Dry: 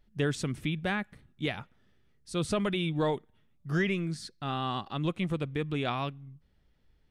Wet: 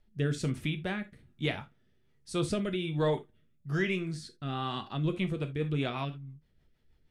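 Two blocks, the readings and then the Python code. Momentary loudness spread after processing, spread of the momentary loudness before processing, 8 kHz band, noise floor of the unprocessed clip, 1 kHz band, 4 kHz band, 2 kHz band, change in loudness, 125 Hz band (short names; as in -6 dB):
9 LU, 9 LU, -2.0 dB, -67 dBFS, -3.5 dB, -1.5 dB, -2.0 dB, -1.0 dB, +0.5 dB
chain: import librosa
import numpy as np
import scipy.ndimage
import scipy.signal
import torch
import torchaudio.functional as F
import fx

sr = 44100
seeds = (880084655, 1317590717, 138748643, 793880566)

y = fx.rev_gated(x, sr, seeds[0], gate_ms=100, shape='falling', drr_db=6.5)
y = fx.rotary_switch(y, sr, hz=1.2, then_hz=6.3, switch_at_s=4.8)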